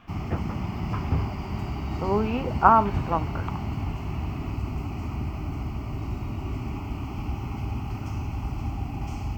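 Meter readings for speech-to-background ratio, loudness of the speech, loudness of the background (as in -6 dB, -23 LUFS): 7.0 dB, -25.0 LUFS, -32.0 LUFS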